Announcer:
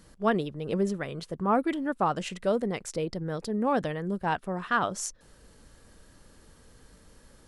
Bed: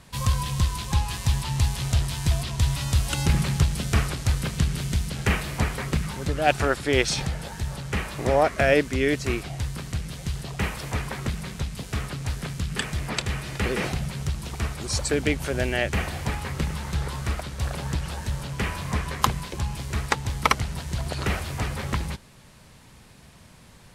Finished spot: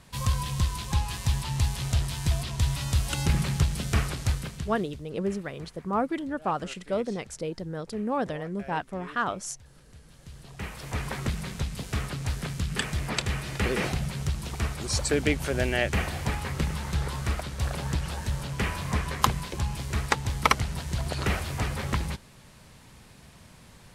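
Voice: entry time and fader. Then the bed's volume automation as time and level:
4.45 s, -2.0 dB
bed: 4.29 s -3 dB
5.07 s -25 dB
9.85 s -25 dB
11.09 s -1 dB

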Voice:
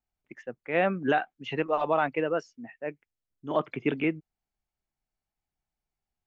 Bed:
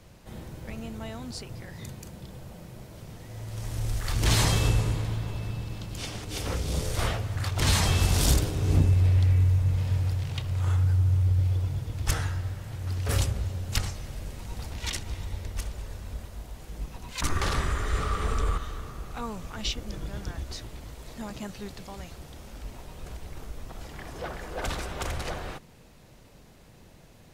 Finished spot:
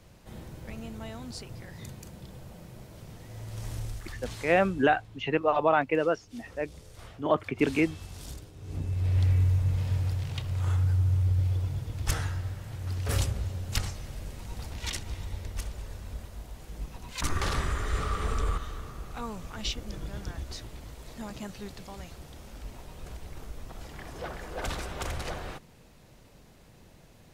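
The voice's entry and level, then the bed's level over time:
3.75 s, +2.0 dB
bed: 3.72 s -2.5 dB
4.38 s -20 dB
8.53 s -20 dB
9.21 s -2 dB

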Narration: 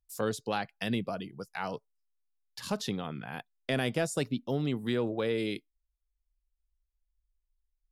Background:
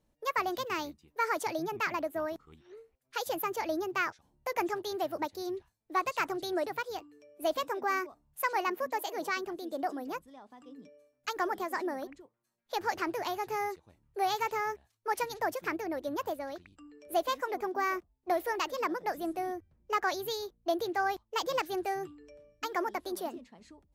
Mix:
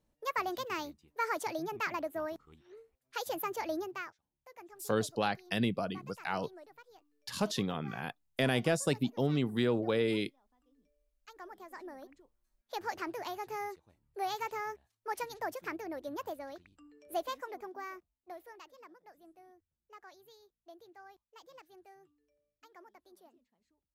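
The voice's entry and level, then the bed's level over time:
4.70 s, +0.5 dB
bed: 3.79 s -3 dB
4.3 s -21 dB
11.11 s -21 dB
12.48 s -5.5 dB
17.17 s -5.5 dB
18.94 s -24 dB

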